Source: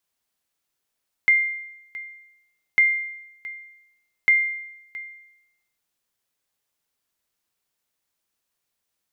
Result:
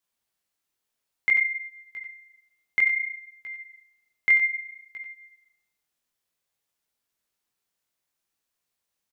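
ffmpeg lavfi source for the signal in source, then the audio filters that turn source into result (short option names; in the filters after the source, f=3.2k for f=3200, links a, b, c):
-f lavfi -i "aevalsrc='0.299*(sin(2*PI*2100*mod(t,1.5))*exp(-6.91*mod(t,1.5)/0.87)+0.119*sin(2*PI*2100*max(mod(t,1.5)-0.67,0))*exp(-6.91*max(mod(t,1.5)-0.67,0)/0.87))':d=4.5:s=44100"
-filter_complex "[0:a]flanger=delay=16.5:depth=7.8:speed=0.58,asplit=2[a][b];[b]aecho=0:1:92:0.355[c];[a][c]amix=inputs=2:normalize=0"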